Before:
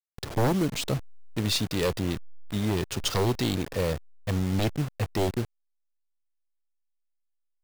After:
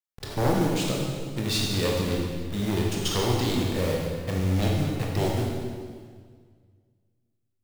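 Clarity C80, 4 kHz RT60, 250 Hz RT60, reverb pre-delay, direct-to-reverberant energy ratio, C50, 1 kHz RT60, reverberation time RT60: 2.0 dB, 1.6 s, 2.0 s, 17 ms, -2.0 dB, 0.5 dB, 1.7 s, 1.8 s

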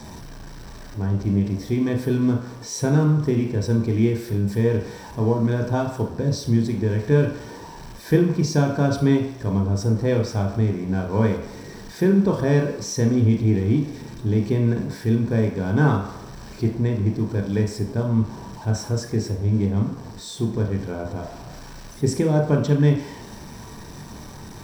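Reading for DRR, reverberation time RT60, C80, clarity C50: 1.5 dB, not exponential, 9.5 dB, 6.0 dB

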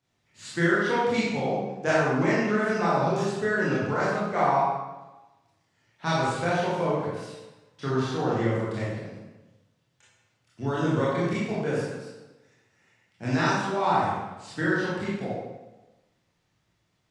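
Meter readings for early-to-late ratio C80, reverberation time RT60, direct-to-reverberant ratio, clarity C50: 1.5 dB, 1.1 s, -8.5 dB, -2.0 dB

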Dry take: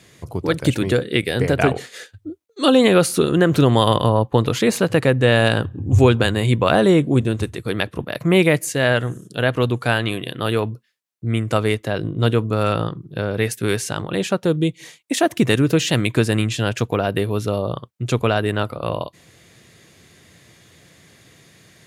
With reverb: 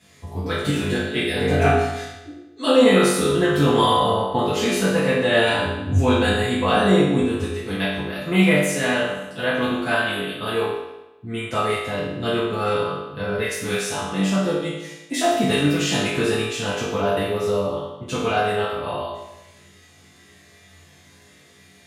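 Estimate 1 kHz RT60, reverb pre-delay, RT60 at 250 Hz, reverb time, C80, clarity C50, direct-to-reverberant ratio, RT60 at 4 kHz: 1.0 s, 5 ms, 1.0 s, 1.0 s, 3.5 dB, 0.0 dB, -11.5 dB, 0.90 s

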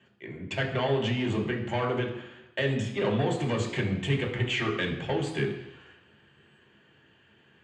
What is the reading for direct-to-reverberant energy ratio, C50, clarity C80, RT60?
-1.0 dB, 7.0 dB, 9.5 dB, 0.90 s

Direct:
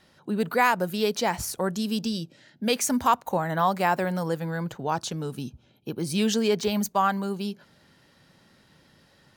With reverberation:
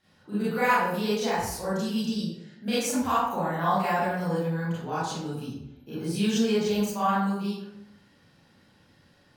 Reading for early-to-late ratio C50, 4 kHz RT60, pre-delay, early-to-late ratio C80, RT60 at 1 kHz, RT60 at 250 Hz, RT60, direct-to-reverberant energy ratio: -2.0 dB, 0.50 s, 28 ms, 3.0 dB, 0.80 s, 0.85 s, 0.80 s, -11.5 dB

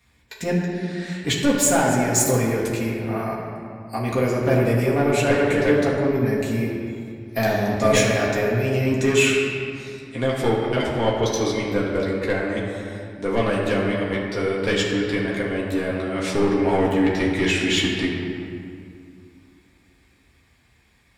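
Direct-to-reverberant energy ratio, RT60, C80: -5.5 dB, 2.3 s, 2.0 dB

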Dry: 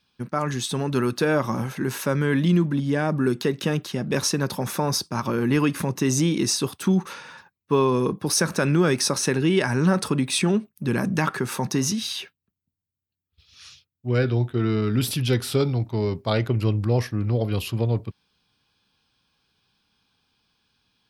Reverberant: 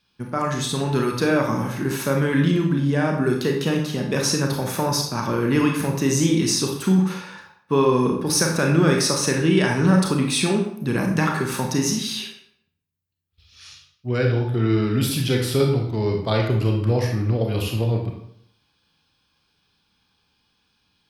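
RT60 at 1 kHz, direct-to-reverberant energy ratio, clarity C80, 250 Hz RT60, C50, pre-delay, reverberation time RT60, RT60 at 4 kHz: 0.70 s, 1.0 dB, 8.0 dB, 0.70 s, 4.5 dB, 28 ms, 0.70 s, 0.50 s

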